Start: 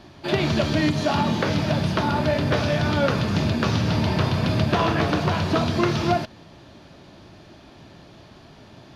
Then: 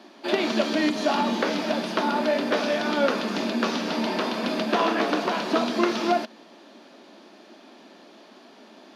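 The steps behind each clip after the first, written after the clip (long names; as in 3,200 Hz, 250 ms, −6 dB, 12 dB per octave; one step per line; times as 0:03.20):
elliptic high-pass filter 220 Hz, stop band 50 dB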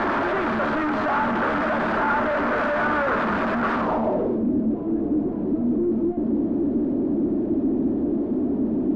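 sign of each sample alone
low-pass filter sweep 1,400 Hz → 300 Hz, 0:03.74–0:04.45
level +2.5 dB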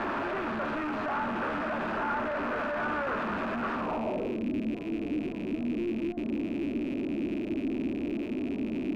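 loose part that buzzes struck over −34 dBFS, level −26 dBFS
level −9 dB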